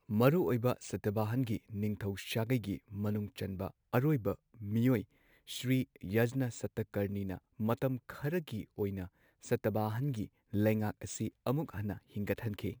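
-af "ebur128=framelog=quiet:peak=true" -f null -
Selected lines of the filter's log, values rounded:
Integrated loudness:
  I:         -35.5 LUFS
  Threshold: -45.6 LUFS
Loudness range:
  LRA:         2.5 LU
  Threshold: -55.9 LUFS
  LRA low:   -37.1 LUFS
  LRA high:  -34.6 LUFS
True peak:
  Peak:      -13.8 dBFS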